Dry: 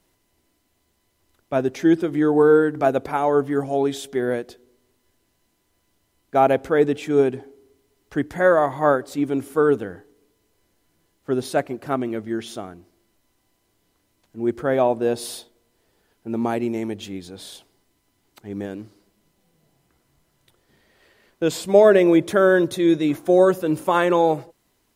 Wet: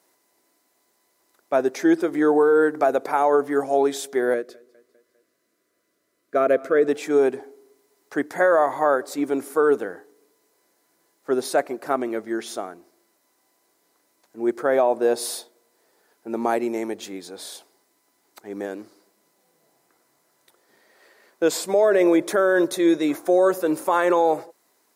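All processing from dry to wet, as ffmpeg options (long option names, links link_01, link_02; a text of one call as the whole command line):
ffmpeg -i in.wav -filter_complex "[0:a]asettb=1/sr,asplit=3[link_01][link_02][link_03];[link_01]atrim=end=4.344[link_04];[link_02]atrim=start=4.34:end=6.88,asetpts=PTS-STARTPTS,afade=type=in:duration=0.004:curve=qsin,afade=type=out:start_time=2.536:duration=0.004:curve=qsin,asuperstop=centerf=850:order=4:qfactor=1.9,highshelf=frequency=2800:gain=-8.5,aecho=1:1:201|402|603|804:0.0668|0.0374|0.021|0.0117,atrim=end_sample=112014[link_05];[link_03]atrim=start=6.876[link_06];[link_04][link_05]acrossfade=duration=0.004:curve1=hsin:curve2=qsin[link_07];[link_07][link_06]acrossfade=duration=0.004:curve1=qsin:curve2=hsin,highpass=400,equalizer=frequency=3000:width_type=o:width=0.61:gain=-9,alimiter=level_in=13dB:limit=-1dB:release=50:level=0:latency=1,volume=-8.5dB" out.wav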